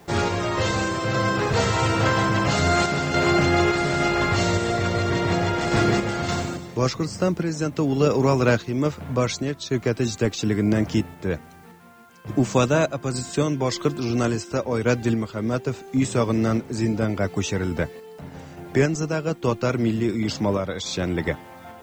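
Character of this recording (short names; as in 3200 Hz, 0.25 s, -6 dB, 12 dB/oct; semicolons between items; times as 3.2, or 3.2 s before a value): a quantiser's noise floor 10-bit, dither triangular; random-step tremolo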